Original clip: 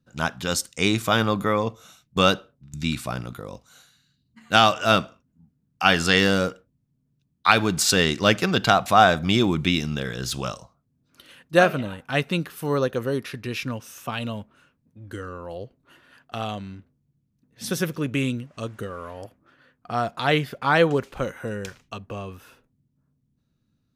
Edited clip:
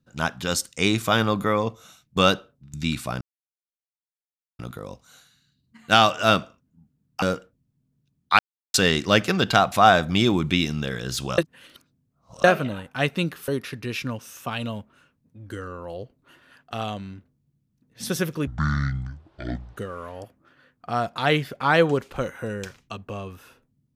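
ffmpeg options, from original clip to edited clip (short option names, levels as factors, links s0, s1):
-filter_complex "[0:a]asplit=10[s0][s1][s2][s3][s4][s5][s6][s7][s8][s9];[s0]atrim=end=3.21,asetpts=PTS-STARTPTS,afade=t=out:st=3.206:d=0.004:c=hsin,apad=pad_dur=1.38[s10];[s1]atrim=start=3.21:end=5.842,asetpts=PTS-STARTPTS,afade=t=in:d=0.004:c=hsin[s11];[s2]atrim=start=6.358:end=7.53,asetpts=PTS-STARTPTS,afade=t=out:st=1.168:d=0.004:c=hsin[s12];[s3]atrim=start=7.53:end=7.88,asetpts=PTS-STARTPTS,volume=0[s13];[s4]atrim=start=7.88:end=10.522,asetpts=PTS-STARTPTS,afade=t=in:d=0.004:c=hsin[s14];[s5]atrim=start=10.518:end=11.582,asetpts=PTS-STARTPTS,areverse[s15];[s6]atrim=start=11.578:end=12.622[s16];[s7]atrim=start=13.088:end=18.084[s17];[s8]atrim=start=18.08:end=18.78,asetpts=PTS-STARTPTS,asetrate=23814,aresample=44100[s18];[s9]atrim=start=18.776[s19];[s10][s11]concat=n=2:v=0:a=1[s20];[s12][s13][s14]concat=n=3:v=0:a=1[s21];[s20][s21]acrossfade=d=0.004:c1=hsin:c2=hsin[s22];[s22][s15]acrossfade=d=0.004:c1=hsin:c2=hsin[s23];[s23][s16]acrossfade=d=0.004:c1=hsin:c2=hsin[s24];[s24][s17]acrossfade=d=0.004:c1=hsin:c2=hsin[s25];[s25][s18]acrossfade=d=0.004:c1=hsin:c2=hsin[s26];[s26][s19]acrossfade=d=0.004:c1=hsin:c2=hsin"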